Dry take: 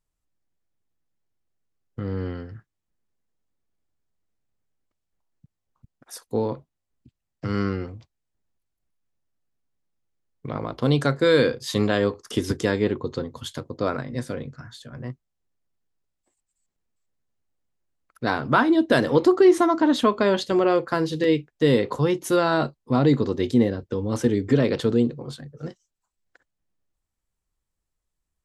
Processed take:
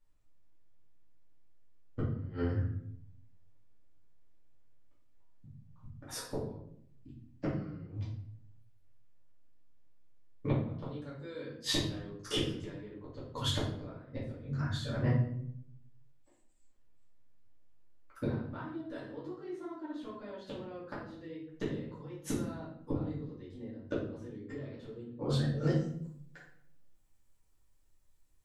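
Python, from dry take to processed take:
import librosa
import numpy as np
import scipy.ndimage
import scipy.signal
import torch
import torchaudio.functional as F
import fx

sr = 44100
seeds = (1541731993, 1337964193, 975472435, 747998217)

y = fx.high_shelf(x, sr, hz=6100.0, db=fx.steps((0.0, -8.5), (25.61, 5.0)))
y = fx.gate_flip(y, sr, shuts_db=-20.0, range_db=-31)
y = fx.room_shoebox(y, sr, seeds[0], volume_m3=130.0, walls='mixed', distance_m=2.4)
y = F.gain(torch.from_numpy(y), -4.5).numpy()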